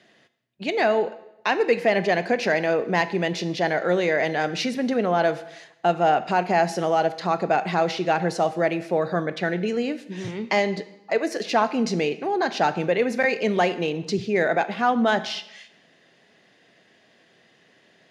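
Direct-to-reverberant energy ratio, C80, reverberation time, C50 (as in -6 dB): 12.0 dB, 16.5 dB, 0.85 s, 14.5 dB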